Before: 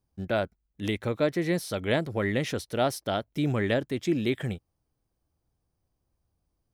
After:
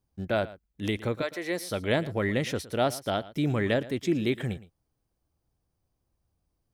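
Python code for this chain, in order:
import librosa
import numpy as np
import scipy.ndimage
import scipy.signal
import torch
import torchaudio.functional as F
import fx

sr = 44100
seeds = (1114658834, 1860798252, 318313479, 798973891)

p1 = fx.highpass(x, sr, hz=fx.line((1.21, 910.0), (1.7, 230.0)), slope=12, at=(1.21, 1.7), fade=0.02)
y = p1 + fx.echo_single(p1, sr, ms=114, db=-18.0, dry=0)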